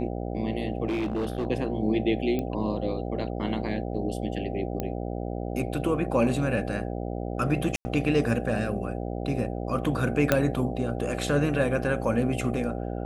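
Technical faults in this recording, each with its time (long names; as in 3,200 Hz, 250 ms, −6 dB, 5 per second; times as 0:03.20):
mains buzz 60 Hz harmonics 13 −32 dBFS
0:00.88–0:01.47: clipping −24 dBFS
0:02.39: click −18 dBFS
0:04.80: click −16 dBFS
0:07.76–0:07.85: drop-out 90 ms
0:10.32: click −6 dBFS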